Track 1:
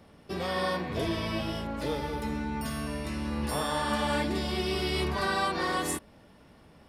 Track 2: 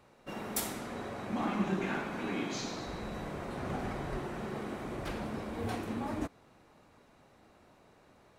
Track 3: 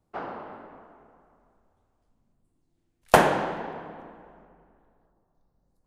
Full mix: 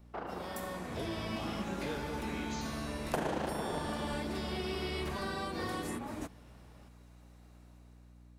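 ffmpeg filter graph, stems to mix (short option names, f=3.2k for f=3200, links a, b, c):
-filter_complex "[0:a]volume=-13.5dB[a];[1:a]highshelf=f=4.5k:g=11.5,volume=-14dB[b];[2:a]alimiter=limit=-15.5dB:level=0:latency=1:release=131,tremolo=f=27:d=0.571,volume=-1.5dB[c];[a][b][c]amix=inputs=3:normalize=0,dynaudnorm=f=260:g=7:m=9dB,aeval=exprs='val(0)+0.00178*(sin(2*PI*60*n/s)+sin(2*PI*2*60*n/s)/2+sin(2*PI*3*60*n/s)/3+sin(2*PI*4*60*n/s)/4+sin(2*PI*5*60*n/s)/5)':c=same,acrossover=split=480|3300[d][e][f];[d]acompressor=threshold=-36dB:ratio=4[g];[e]acompressor=threshold=-40dB:ratio=4[h];[f]acompressor=threshold=-49dB:ratio=4[i];[g][h][i]amix=inputs=3:normalize=0"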